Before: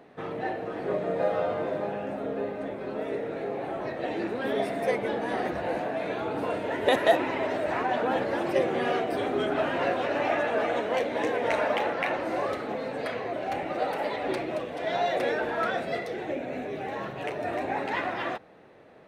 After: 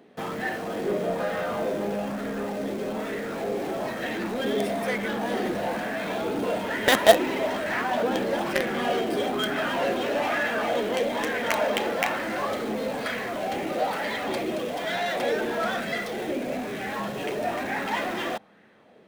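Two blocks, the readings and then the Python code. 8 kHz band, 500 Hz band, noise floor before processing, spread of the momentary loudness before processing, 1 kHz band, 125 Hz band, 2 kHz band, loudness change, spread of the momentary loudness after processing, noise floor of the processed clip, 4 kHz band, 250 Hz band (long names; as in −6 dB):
can't be measured, +1.0 dB, −38 dBFS, 7 LU, +1.0 dB, +2.0 dB, +4.0 dB, +2.0 dB, 6 LU, −33 dBFS, +7.0 dB, +3.5 dB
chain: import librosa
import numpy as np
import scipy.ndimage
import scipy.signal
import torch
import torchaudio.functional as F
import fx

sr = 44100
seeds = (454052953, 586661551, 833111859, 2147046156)

p1 = fx.high_shelf(x, sr, hz=2100.0, db=10.0)
p2 = fx.small_body(p1, sr, hz=(210.0, 3200.0), ring_ms=55, db=12)
p3 = fx.quant_companded(p2, sr, bits=2)
p4 = p2 + (p3 * librosa.db_to_amplitude(-5.5))
p5 = fx.bell_lfo(p4, sr, hz=1.1, low_hz=360.0, high_hz=1800.0, db=8)
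y = p5 * librosa.db_to_amplitude(-7.5)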